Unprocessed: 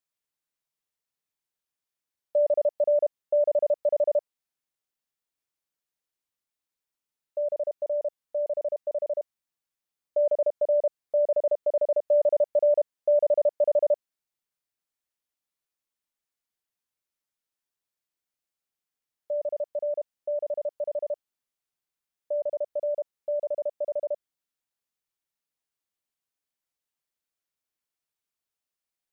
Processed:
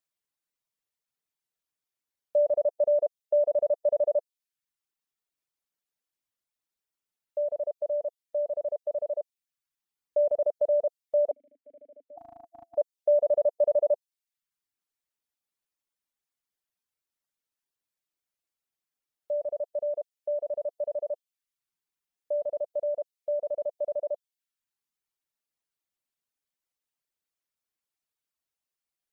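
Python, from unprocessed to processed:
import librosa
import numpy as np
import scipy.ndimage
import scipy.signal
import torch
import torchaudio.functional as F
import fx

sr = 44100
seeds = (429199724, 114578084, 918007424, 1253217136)

y = fx.vowel_filter(x, sr, vowel='i', at=(11.31, 12.18))
y = fx.dereverb_blind(y, sr, rt60_s=0.68)
y = fx.spec_erase(y, sr, start_s=12.16, length_s=0.6, low_hz=340.0, high_hz=680.0)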